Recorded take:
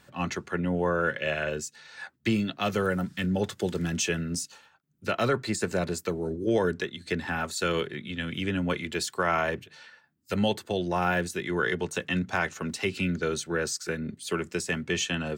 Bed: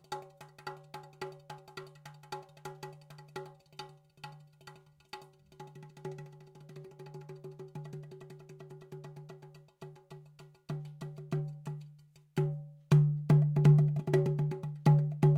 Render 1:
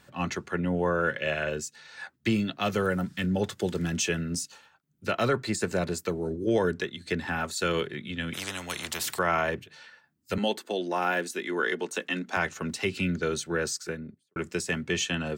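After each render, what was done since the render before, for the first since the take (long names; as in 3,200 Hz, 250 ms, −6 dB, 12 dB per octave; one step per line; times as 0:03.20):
0:08.33–0:09.19: every bin compressed towards the loudest bin 4 to 1
0:10.38–0:12.37: Chebyshev high-pass filter 240 Hz, order 3
0:13.70–0:14.36: fade out and dull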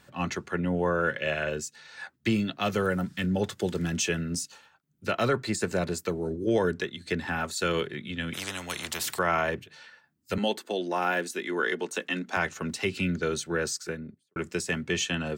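no processing that can be heard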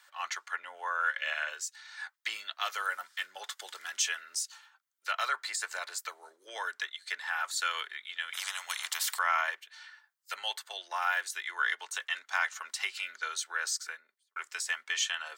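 high-pass filter 960 Hz 24 dB per octave
notch filter 2,600 Hz, Q 12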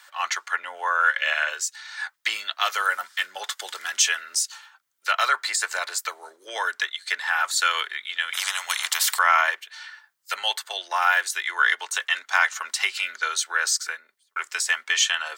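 level +10 dB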